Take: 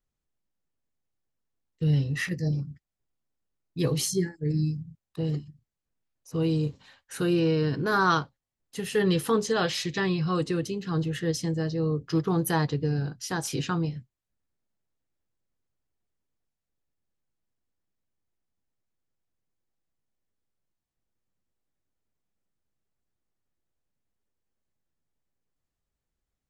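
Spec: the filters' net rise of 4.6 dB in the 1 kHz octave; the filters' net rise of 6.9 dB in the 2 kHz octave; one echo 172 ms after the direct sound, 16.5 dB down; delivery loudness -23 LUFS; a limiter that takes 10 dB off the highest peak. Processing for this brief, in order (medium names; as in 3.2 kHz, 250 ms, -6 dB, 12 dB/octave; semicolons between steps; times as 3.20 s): peaking EQ 1 kHz +3 dB; peaking EQ 2 kHz +8 dB; peak limiter -17 dBFS; delay 172 ms -16.5 dB; trim +4.5 dB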